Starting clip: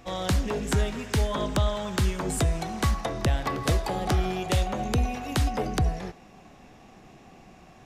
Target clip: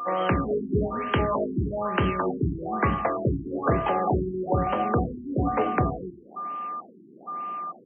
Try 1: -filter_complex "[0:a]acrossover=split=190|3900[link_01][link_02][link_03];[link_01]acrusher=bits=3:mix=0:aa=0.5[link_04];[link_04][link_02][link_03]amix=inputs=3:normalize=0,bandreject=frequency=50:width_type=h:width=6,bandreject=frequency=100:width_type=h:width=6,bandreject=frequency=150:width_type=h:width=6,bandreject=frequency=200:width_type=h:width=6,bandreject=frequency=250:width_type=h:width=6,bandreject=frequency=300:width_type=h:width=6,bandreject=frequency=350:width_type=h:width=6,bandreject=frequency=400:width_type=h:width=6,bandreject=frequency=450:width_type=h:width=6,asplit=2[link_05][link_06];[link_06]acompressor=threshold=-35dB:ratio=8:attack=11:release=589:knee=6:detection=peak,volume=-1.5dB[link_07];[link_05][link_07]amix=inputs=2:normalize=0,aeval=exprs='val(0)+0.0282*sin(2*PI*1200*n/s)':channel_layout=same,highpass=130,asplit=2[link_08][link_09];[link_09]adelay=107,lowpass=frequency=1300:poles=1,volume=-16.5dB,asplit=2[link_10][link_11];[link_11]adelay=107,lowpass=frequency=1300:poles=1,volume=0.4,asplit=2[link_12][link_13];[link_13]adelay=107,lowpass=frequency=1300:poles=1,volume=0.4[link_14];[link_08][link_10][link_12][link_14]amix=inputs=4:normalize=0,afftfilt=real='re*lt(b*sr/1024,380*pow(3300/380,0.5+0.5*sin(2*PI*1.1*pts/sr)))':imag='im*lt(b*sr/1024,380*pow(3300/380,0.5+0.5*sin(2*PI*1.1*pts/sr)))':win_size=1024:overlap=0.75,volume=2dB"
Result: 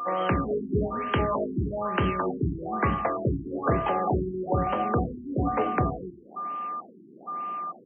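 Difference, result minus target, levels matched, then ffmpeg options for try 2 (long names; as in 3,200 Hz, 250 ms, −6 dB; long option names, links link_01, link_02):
downward compressor: peak gain reduction +7 dB
-filter_complex "[0:a]acrossover=split=190|3900[link_01][link_02][link_03];[link_01]acrusher=bits=3:mix=0:aa=0.5[link_04];[link_04][link_02][link_03]amix=inputs=3:normalize=0,bandreject=frequency=50:width_type=h:width=6,bandreject=frequency=100:width_type=h:width=6,bandreject=frequency=150:width_type=h:width=6,bandreject=frequency=200:width_type=h:width=6,bandreject=frequency=250:width_type=h:width=6,bandreject=frequency=300:width_type=h:width=6,bandreject=frequency=350:width_type=h:width=6,bandreject=frequency=400:width_type=h:width=6,bandreject=frequency=450:width_type=h:width=6,asplit=2[link_05][link_06];[link_06]acompressor=threshold=-27dB:ratio=8:attack=11:release=589:knee=6:detection=peak,volume=-1.5dB[link_07];[link_05][link_07]amix=inputs=2:normalize=0,aeval=exprs='val(0)+0.0282*sin(2*PI*1200*n/s)':channel_layout=same,highpass=130,asplit=2[link_08][link_09];[link_09]adelay=107,lowpass=frequency=1300:poles=1,volume=-16.5dB,asplit=2[link_10][link_11];[link_11]adelay=107,lowpass=frequency=1300:poles=1,volume=0.4,asplit=2[link_12][link_13];[link_13]adelay=107,lowpass=frequency=1300:poles=1,volume=0.4[link_14];[link_08][link_10][link_12][link_14]amix=inputs=4:normalize=0,afftfilt=real='re*lt(b*sr/1024,380*pow(3300/380,0.5+0.5*sin(2*PI*1.1*pts/sr)))':imag='im*lt(b*sr/1024,380*pow(3300/380,0.5+0.5*sin(2*PI*1.1*pts/sr)))':win_size=1024:overlap=0.75,volume=2dB"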